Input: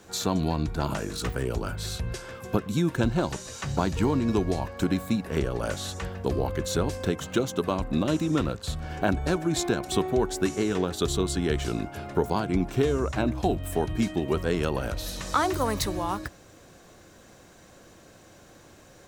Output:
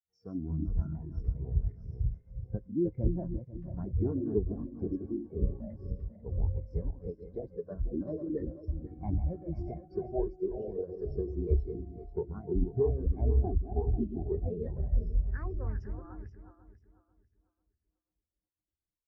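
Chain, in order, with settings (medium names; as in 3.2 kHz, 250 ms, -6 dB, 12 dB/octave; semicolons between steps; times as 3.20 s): backward echo that repeats 247 ms, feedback 76%, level -4.5 dB; bass shelf 100 Hz +11.5 dB; formant shift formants +5 st; resampled via 16 kHz; spectral contrast expander 2.5:1; trim -8.5 dB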